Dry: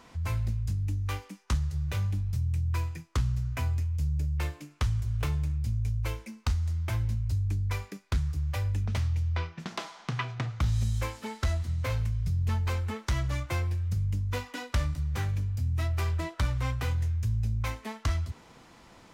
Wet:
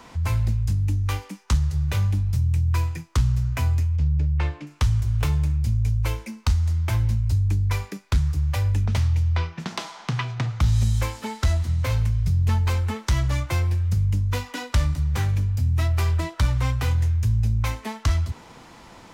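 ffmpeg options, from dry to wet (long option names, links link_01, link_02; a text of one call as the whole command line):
ffmpeg -i in.wav -filter_complex "[0:a]asettb=1/sr,asplit=3[link_01][link_02][link_03];[link_01]atrim=end=3.964[link_04];[link_02]atrim=start=3.96:end=4.67,asetpts=PTS-STARTPTS,afade=type=in:duration=0.004:curve=qsin,afade=type=out:start_time=0.706:duration=0.004:curve=qsin,lowpass=3400[link_05];[link_03]atrim=start=4.666[link_06];[link_04][link_05]acrossfade=duration=0.004:curve1=hsin:curve2=qsin[link_07];[link_07][link_06]acrossfade=duration=0.004:curve1=qsin:curve2=hsin,equalizer=frequency=900:width=5.2:gain=3.5,acrossover=split=230|3000[link_08][link_09][link_10];[link_09]acompressor=threshold=-40dB:ratio=2[link_11];[link_08][link_11][link_10]amix=inputs=3:normalize=0,volume=7.5dB" out.wav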